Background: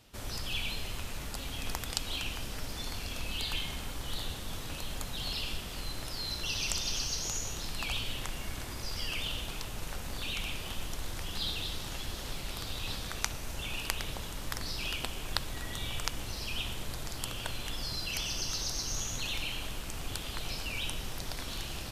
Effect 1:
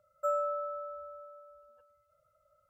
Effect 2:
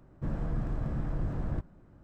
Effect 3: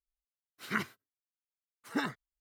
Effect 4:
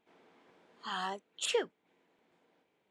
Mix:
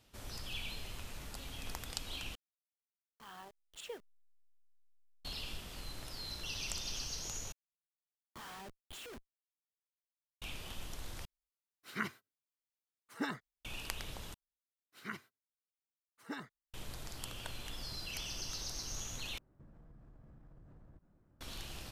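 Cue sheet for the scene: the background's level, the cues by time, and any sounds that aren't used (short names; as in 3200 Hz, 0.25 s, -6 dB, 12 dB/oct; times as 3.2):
background -7.5 dB
2.35 replace with 4 -14.5 dB + level-crossing sampler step -38.5 dBFS
7.52 replace with 4 -7.5 dB + Schmitt trigger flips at -46.5 dBFS
11.25 replace with 3 -5 dB
14.34 replace with 3 -11 dB
19.38 replace with 2 -13 dB + compressor 16:1, threshold -41 dBFS
not used: 1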